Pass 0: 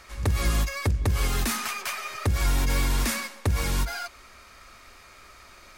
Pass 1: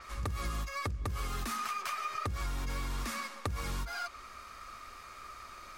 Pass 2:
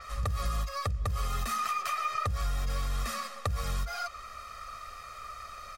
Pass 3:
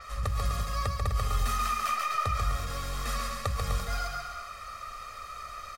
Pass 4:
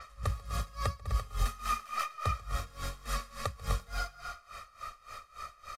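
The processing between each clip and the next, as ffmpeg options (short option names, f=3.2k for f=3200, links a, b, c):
-af "equalizer=f=1.2k:t=o:w=0.24:g=11.5,acompressor=threshold=-31dB:ratio=5,adynamicequalizer=threshold=0.00224:dfrequency=7900:dqfactor=0.7:tfrequency=7900:tqfactor=0.7:attack=5:release=100:ratio=0.375:range=2.5:mode=cutabove:tftype=highshelf,volume=-2.5dB"
-af "aecho=1:1:1.6:0.92"
-af "aecho=1:1:140|252|341.6|413.3|470.6:0.631|0.398|0.251|0.158|0.1"
-af "aresample=32000,aresample=44100,aeval=exprs='val(0)*pow(10,-21*(0.5-0.5*cos(2*PI*3.5*n/s))/20)':c=same"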